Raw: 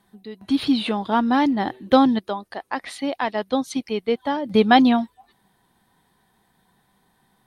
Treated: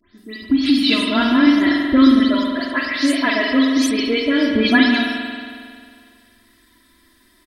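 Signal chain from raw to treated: spectral delay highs late, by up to 0.174 s; fixed phaser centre 330 Hz, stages 4; comb 3 ms, depth 87%; compressor 5:1, threshold -20 dBFS, peak gain reduction 9.5 dB; thirty-one-band EQ 100 Hz +9 dB, 200 Hz -5 dB, 400 Hz -9 dB, 2000 Hz +4 dB, 5000 Hz +8 dB; spring tank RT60 2.1 s, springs 45 ms, chirp 30 ms, DRR 0.5 dB; gain +8.5 dB

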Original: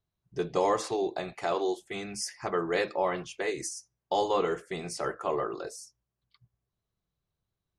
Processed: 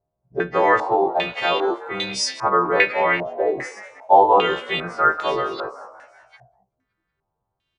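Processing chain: frequency quantiser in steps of 2 st; frequency-shifting echo 0.188 s, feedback 56%, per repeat +67 Hz, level -17 dB; stepped low-pass 2.5 Hz 660–3800 Hz; gain +7 dB

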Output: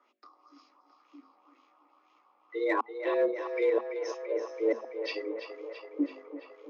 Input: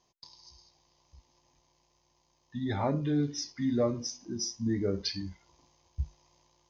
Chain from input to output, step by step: notches 50/100/150/200/250/300/350/400/450/500 Hz; LFO low-pass sine 2 Hz 630–2500 Hz; flipped gate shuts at -20 dBFS, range -39 dB; in parallel at -4.5 dB: hard clip -26.5 dBFS, distortion -16 dB; on the sum: tape echo 0.334 s, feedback 82%, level -7.5 dB, low-pass 4000 Hz; frequency shift +220 Hz

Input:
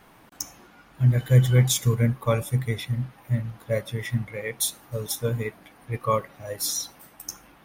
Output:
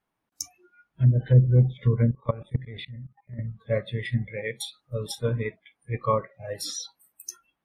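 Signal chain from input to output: treble ducked by the level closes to 530 Hz, closed at -15 dBFS; spectral noise reduction 28 dB; 2.11–3.39 level quantiser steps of 19 dB

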